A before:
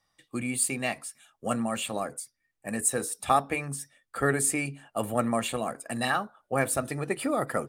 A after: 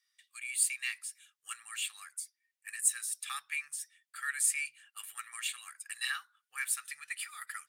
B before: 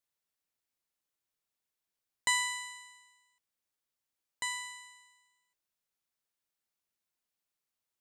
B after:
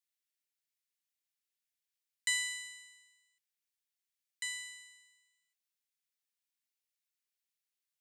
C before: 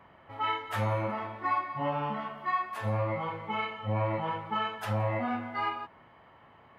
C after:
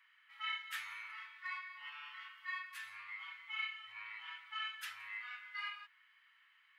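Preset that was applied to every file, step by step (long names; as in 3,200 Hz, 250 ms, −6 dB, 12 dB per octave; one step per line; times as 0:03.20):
inverse Chebyshev high-pass filter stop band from 660 Hz, stop band 50 dB
level −2 dB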